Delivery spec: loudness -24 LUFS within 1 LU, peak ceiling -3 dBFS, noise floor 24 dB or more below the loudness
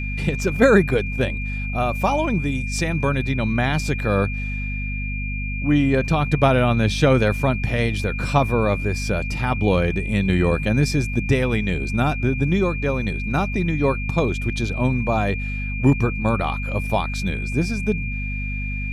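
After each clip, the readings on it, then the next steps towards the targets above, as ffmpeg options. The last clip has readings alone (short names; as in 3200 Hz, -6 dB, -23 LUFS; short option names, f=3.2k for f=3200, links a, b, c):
hum 50 Hz; harmonics up to 250 Hz; hum level -24 dBFS; steady tone 2400 Hz; tone level -30 dBFS; loudness -21.5 LUFS; peak -1.5 dBFS; loudness target -24.0 LUFS
-> -af "bandreject=f=50:t=h:w=6,bandreject=f=100:t=h:w=6,bandreject=f=150:t=h:w=6,bandreject=f=200:t=h:w=6,bandreject=f=250:t=h:w=6"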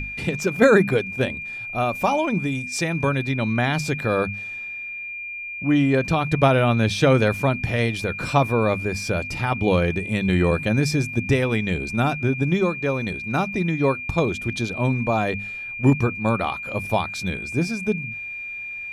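hum none; steady tone 2400 Hz; tone level -30 dBFS
-> -af "bandreject=f=2.4k:w=30"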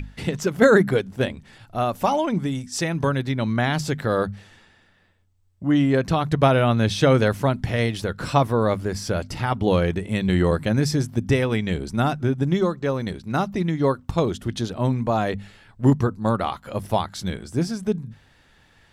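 steady tone none; loudness -22.5 LUFS; peak -3.0 dBFS; loudness target -24.0 LUFS
-> -af "volume=-1.5dB"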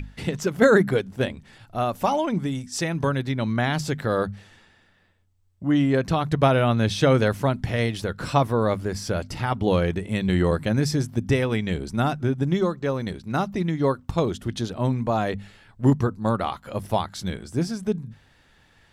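loudness -24.0 LUFS; peak -4.5 dBFS; noise floor -59 dBFS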